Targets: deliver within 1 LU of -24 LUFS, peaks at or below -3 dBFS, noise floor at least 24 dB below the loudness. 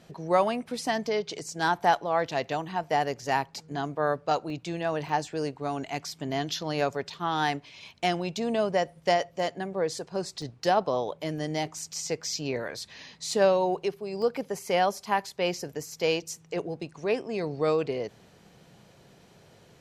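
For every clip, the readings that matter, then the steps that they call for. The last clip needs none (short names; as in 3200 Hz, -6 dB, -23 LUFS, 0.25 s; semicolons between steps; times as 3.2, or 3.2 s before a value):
dropouts 6; longest dropout 1.7 ms; loudness -29.0 LUFS; peak -9.0 dBFS; loudness target -24.0 LUFS
-> interpolate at 1.39/4.5/5.09/10.42/13.31/14.22, 1.7 ms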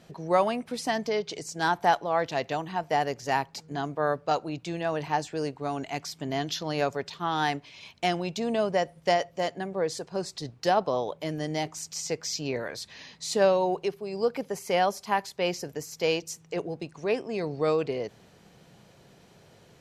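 dropouts 0; loudness -29.0 LUFS; peak -9.0 dBFS; loudness target -24.0 LUFS
-> gain +5 dB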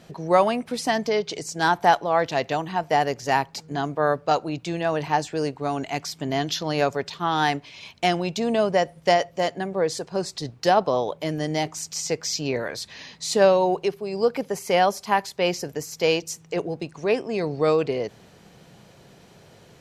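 loudness -24.0 LUFS; peak -4.0 dBFS; noise floor -52 dBFS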